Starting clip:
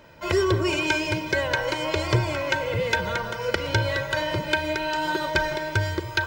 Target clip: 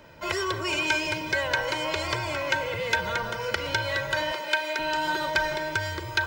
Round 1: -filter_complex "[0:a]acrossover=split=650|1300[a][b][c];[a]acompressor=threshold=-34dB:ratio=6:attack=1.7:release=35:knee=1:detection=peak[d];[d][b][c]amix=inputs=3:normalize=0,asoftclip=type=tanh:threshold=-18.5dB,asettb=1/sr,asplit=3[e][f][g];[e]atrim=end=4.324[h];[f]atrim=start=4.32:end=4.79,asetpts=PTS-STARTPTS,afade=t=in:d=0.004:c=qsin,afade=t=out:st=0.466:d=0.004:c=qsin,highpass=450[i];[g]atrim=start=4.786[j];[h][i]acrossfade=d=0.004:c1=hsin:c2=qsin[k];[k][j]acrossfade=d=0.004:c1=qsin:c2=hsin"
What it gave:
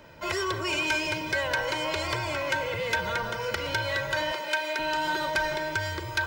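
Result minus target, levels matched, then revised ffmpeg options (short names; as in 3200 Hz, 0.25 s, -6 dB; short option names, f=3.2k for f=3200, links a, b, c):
soft clip: distortion +14 dB
-filter_complex "[0:a]acrossover=split=650|1300[a][b][c];[a]acompressor=threshold=-34dB:ratio=6:attack=1.7:release=35:knee=1:detection=peak[d];[d][b][c]amix=inputs=3:normalize=0,asoftclip=type=tanh:threshold=-8dB,asettb=1/sr,asplit=3[e][f][g];[e]atrim=end=4.324[h];[f]atrim=start=4.32:end=4.79,asetpts=PTS-STARTPTS,afade=t=in:d=0.004:c=qsin,afade=t=out:st=0.466:d=0.004:c=qsin,highpass=450[i];[g]atrim=start=4.786[j];[h][i]acrossfade=d=0.004:c1=hsin:c2=qsin[k];[k][j]acrossfade=d=0.004:c1=qsin:c2=hsin"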